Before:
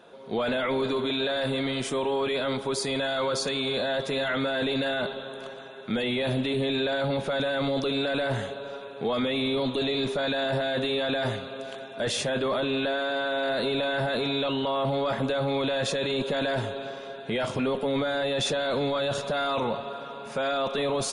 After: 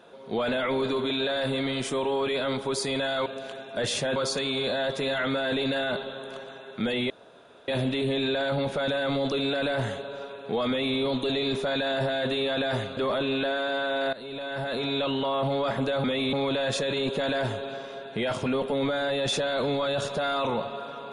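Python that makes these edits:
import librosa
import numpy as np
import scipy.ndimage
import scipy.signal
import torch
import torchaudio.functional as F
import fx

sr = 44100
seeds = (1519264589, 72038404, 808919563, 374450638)

y = fx.edit(x, sr, fx.insert_room_tone(at_s=6.2, length_s=0.58),
    fx.duplicate(start_s=9.2, length_s=0.29, to_s=15.46),
    fx.move(start_s=11.49, length_s=0.9, to_s=3.26),
    fx.fade_in_from(start_s=13.55, length_s=0.87, floor_db=-17.5), tone=tone)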